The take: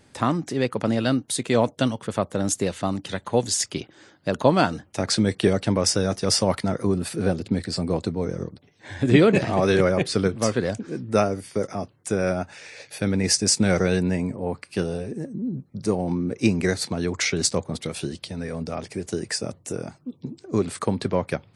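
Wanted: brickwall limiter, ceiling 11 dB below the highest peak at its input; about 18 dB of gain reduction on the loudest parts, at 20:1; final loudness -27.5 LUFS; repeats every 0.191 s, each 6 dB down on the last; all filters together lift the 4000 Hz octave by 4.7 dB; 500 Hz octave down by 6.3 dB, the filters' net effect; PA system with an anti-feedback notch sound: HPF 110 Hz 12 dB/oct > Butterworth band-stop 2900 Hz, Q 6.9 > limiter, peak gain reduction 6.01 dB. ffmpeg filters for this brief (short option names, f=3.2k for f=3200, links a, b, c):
-af "equalizer=f=500:t=o:g=-8,equalizer=f=4k:t=o:g=6.5,acompressor=threshold=-30dB:ratio=20,alimiter=level_in=2dB:limit=-24dB:level=0:latency=1,volume=-2dB,highpass=110,asuperstop=centerf=2900:order=8:qfactor=6.9,aecho=1:1:191|382|573|764|955|1146:0.501|0.251|0.125|0.0626|0.0313|0.0157,volume=11dB,alimiter=limit=-17.5dB:level=0:latency=1"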